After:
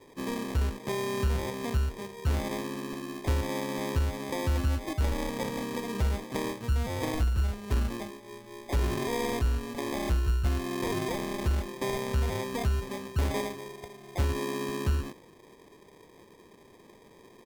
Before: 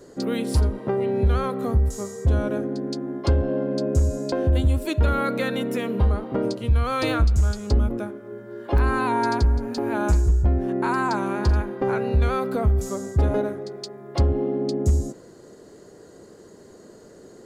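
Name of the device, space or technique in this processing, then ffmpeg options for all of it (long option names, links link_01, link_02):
crushed at another speed: -af "asetrate=35280,aresample=44100,acrusher=samples=39:mix=1:aa=0.000001,asetrate=55125,aresample=44100,volume=-8dB"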